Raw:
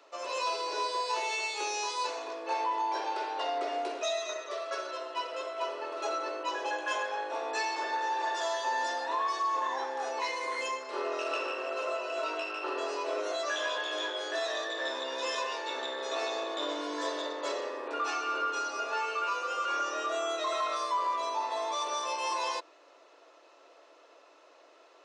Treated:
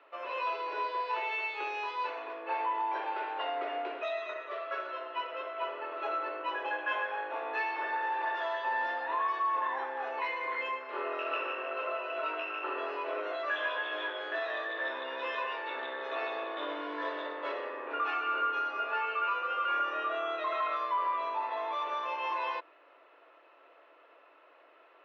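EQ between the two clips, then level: Chebyshev low-pass 2900 Hz, order 3; bell 1600 Hz +7 dB 1.6 oct; -4.0 dB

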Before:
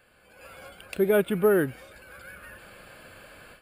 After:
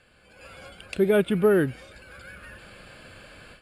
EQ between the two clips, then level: LPF 6600 Hz 12 dB/oct; low shelf 420 Hz +9.5 dB; high shelf 2200 Hz +11 dB; -4.0 dB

